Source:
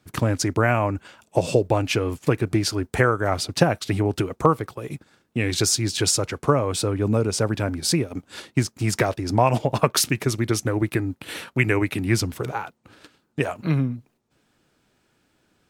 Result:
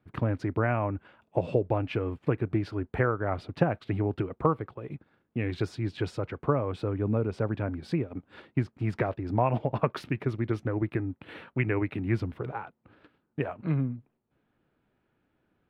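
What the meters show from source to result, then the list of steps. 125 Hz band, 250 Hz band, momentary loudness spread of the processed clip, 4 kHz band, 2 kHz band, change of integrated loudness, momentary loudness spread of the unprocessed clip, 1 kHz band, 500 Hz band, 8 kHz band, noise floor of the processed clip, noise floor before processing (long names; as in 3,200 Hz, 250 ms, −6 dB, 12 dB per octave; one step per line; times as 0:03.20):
−5.5 dB, −6.0 dB, 9 LU, −21.0 dB, −10.0 dB, −7.5 dB, 10 LU, −8.0 dB, −7.0 dB, below −30 dB, −76 dBFS, −68 dBFS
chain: high-frequency loss of the air 490 metres
level −5.5 dB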